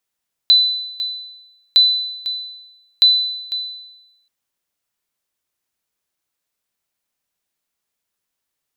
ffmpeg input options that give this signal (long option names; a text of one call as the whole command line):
ffmpeg -f lavfi -i "aevalsrc='0.562*(sin(2*PI*4000*mod(t,1.26))*exp(-6.91*mod(t,1.26)/0.99)+0.211*sin(2*PI*4000*max(mod(t,1.26)-0.5,0))*exp(-6.91*max(mod(t,1.26)-0.5,0)/0.99))':duration=3.78:sample_rate=44100" out.wav